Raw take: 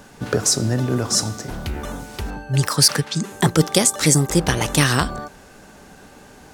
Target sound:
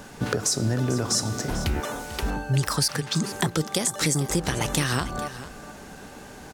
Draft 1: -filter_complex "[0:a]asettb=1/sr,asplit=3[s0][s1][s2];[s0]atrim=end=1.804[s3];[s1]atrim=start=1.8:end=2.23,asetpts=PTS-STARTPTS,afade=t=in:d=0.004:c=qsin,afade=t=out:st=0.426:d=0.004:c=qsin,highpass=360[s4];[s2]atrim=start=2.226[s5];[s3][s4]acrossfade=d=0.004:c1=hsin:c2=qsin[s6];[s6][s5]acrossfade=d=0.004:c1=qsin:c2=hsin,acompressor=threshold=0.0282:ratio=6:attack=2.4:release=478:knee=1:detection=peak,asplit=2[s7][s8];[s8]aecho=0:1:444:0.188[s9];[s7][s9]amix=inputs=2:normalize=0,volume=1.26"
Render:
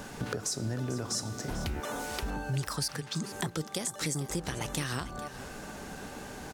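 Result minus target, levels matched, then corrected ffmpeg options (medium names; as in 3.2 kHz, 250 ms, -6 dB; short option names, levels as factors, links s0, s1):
compression: peak gain reduction +9 dB
-filter_complex "[0:a]asettb=1/sr,asplit=3[s0][s1][s2];[s0]atrim=end=1.804[s3];[s1]atrim=start=1.8:end=2.23,asetpts=PTS-STARTPTS,afade=t=in:d=0.004:c=qsin,afade=t=out:st=0.426:d=0.004:c=qsin,highpass=360[s4];[s2]atrim=start=2.226[s5];[s3][s4]acrossfade=d=0.004:c1=hsin:c2=qsin[s6];[s6][s5]acrossfade=d=0.004:c1=qsin:c2=hsin,acompressor=threshold=0.1:ratio=6:attack=2.4:release=478:knee=1:detection=peak,asplit=2[s7][s8];[s8]aecho=0:1:444:0.188[s9];[s7][s9]amix=inputs=2:normalize=0,volume=1.26"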